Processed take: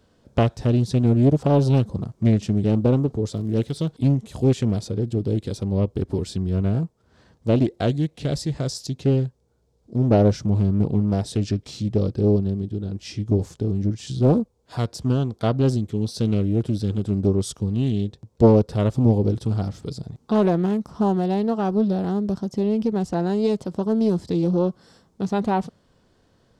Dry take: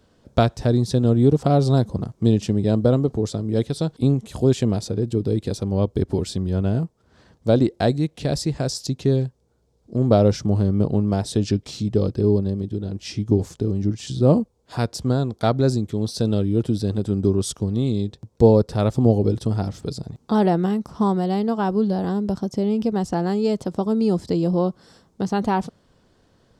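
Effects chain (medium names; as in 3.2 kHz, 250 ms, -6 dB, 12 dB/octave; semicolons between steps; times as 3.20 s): harmonic-percussive split percussive -4 dB; 3.31–3.88 s: crackle 89 per s -39 dBFS; loudspeaker Doppler distortion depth 0.47 ms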